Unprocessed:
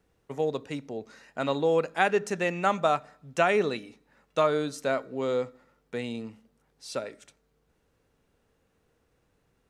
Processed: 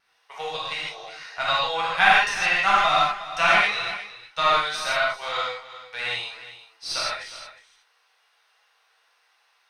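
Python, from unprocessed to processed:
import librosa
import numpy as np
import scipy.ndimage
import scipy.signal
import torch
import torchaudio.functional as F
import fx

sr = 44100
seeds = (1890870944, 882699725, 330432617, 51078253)

p1 = scipy.signal.sosfilt(scipy.signal.butter(4, 800.0, 'highpass', fs=sr, output='sos'), x)
p2 = fx.high_shelf(p1, sr, hz=3700.0, db=11.5)
p3 = fx.rider(p2, sr, range_db=4, speed_s=2.0)
p4 = p2 + (p3 * 10.0 ** (0.0 / 20.0))
p5 = fx.cheby_harmonics(p4, sr, harmonics=(7, 8), levels_db=(-31, -28), full_scale_db=-2.5)
p6 = fx.vibrato(p5, sr, rate_hz=0.49, depth_cents=5.6)
p7 = scipy.signal.savgol_filter(p6, 15, 4, mode='constant')
p8 = p7 + fx.echo_single(p7, sr, ms=360, db=-14.5, dry=0)
p9 = fx.rev_gated(p8, sr, seeds[0], gate_ms=190, shape='flat', drr_db=-8.0)
y = p9 * 10.0 ** (-4.0 / 20.0)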